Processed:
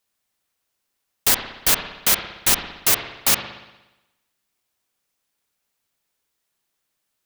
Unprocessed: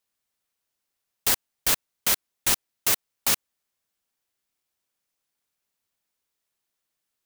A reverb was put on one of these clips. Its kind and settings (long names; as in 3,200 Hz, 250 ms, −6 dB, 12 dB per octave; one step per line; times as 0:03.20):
spring reverb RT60 1 s, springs 59 ms, chirp 30 ms, DRR 6 dB
level +5 dB